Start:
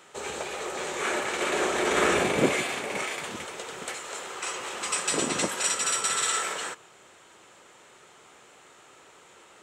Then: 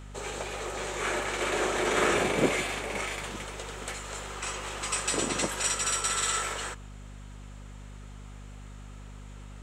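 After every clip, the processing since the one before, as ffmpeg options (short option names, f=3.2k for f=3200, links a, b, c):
-af "aeval=exprs='val(0)+0.00891*(sin(2*PI*50*n/s)+sin(2*PI*2*50*n/s)/2+sin(2*PI*3*50*n/s)/3+sin(2*PI*4*50*n/s)/4+sin(2*PI*5*50*n/s)/5)':c=same,volume=-2dB"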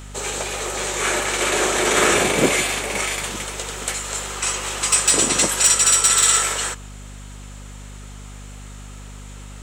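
-af "highshelf=f=4.1k:g=10.5,volume=14dB,asoftclip=hard,volume=-14dB,volume=7dB"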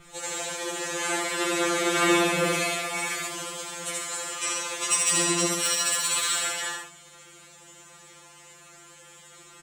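-filter_complex "[0:a]adynamicequalizer=threshold=0.0316:dfrequency=7200:dqfactor=1.3:tfrequency=7200:tqfactor=1.3:attack=5:release=100:ratio=0.375:range=2.5:mode=cutabove:tftype=bell,asplit=2[a][b];[b]aecho=0:1:75.8|139.9:0.708|0.447[c];[a][c]amix=inputs=2:normalize=0,afftfilt=real='re*2.83*eq(mod(b,8),0)':imag='im*2.83*eq(mod(b,8),0)':win_size=2048:overlap=0.75,volume=-5dB"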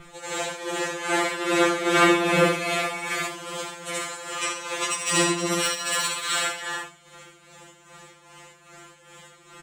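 -filter_complex "[0:a]asplit=2[a][b];[b]adynamicsmooth=sensitivity=0.5:basefreq=4.5k,volume=2dB[c];[a][c]amix=inputs=2:normalize=0,tremolo=f=2.5:d=0.65"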